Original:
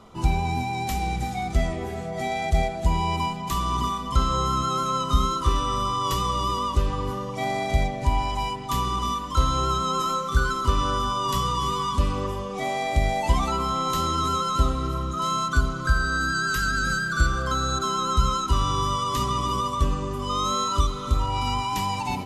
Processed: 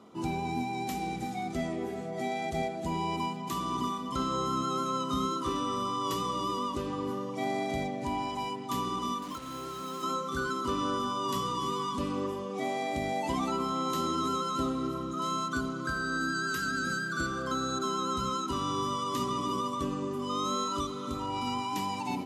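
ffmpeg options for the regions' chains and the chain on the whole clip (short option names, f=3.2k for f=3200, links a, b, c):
-filter_complex "[0:a]asettb=1/sr,asplit=3[a][b][c];[a]atrim=end=9.224[d];[b]atrim=start=9.22:end=10.03,asetpts=PTS-STARTPTS,afade=t=in:d=0.004:c=qsin,afade=t=out:st=0.806:d=0.004:c=qsin,acompressor=threshold=-28dB:ratio=10:attack=3.2:release=140:knee=1:detection=peak,acrusher=bits=5:mix=0:aa=0.5[e];[c]atrim=start=10.026[f];[d][e]acrossfade=d=0.004:c1=hsin:c2=qsin[g];[g][f]acrossfade=d=0.004:c1=qsin:c2=hsin,highpass=160,equalizer=f=290:t=o:w=1.1:g=9.5,volume=-7.5dB"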